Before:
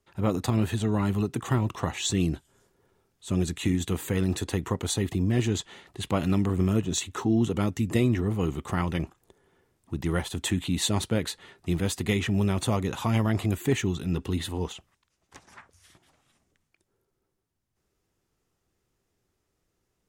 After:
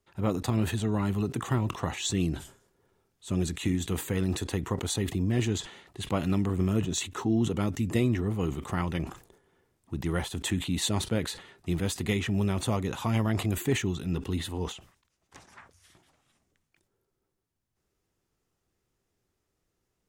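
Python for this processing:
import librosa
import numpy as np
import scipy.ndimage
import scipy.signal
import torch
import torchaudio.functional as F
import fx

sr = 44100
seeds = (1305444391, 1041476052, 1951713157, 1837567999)

y = fx.sustainer(x, sr, db_per_s=130.0)
y = y * librosa.db_to_amplitude(-2.5)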